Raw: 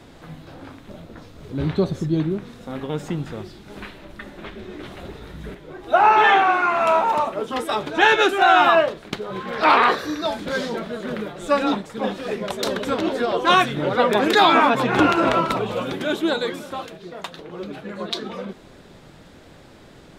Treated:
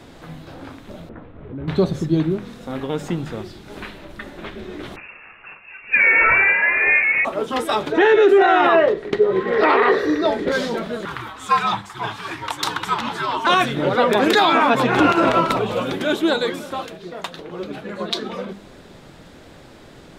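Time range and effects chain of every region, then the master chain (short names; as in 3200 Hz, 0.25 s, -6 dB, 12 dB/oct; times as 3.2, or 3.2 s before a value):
1.09–1.68 Bessel low-pass 1700 Hz, order 8 + compressor 3:1, threshold -32 dBFS
4.96–7.25 Bessel high-pass 560 Hz, order 6 + inverted band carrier 3100 Hz
7.92–10.52 LPF 2900 Hz 6 dB/oct + small resonant body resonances 410/1900 Hz, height 15 dB, ringing for 35 ms
11.05–13.47 HPF 170 Hz + resonant low shelf 800 Hz -8.5 dB, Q 3 + frequency shift -90 Hz
whole clip: notches 50/100/150/200 Hz; limiter -9 dBFS; gain +3 dB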